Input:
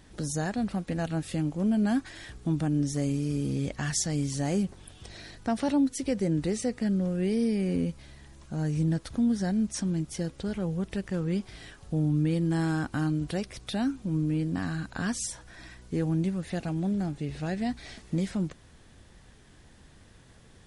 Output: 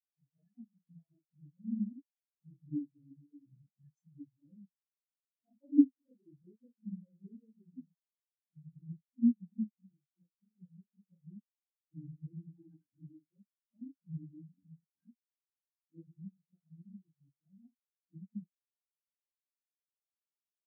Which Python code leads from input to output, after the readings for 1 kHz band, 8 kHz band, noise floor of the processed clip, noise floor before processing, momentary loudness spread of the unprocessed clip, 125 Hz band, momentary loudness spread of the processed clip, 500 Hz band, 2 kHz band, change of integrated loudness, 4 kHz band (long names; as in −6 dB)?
below −40 dB, below −40 dB, below −85 dBFS, −55 dBFS, 8 LU, −22.0 dB, 24 LU, below −25 dB, below −40 dB, −7.0 dB, below −40 dB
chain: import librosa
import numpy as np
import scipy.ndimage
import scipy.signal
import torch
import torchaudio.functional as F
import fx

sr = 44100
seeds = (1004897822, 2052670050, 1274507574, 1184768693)

y = fx.phase_scramble(x, sr, seeds[0], window_ms=100)
y = fx.spectral_expand(y, sr, expansion=4.0)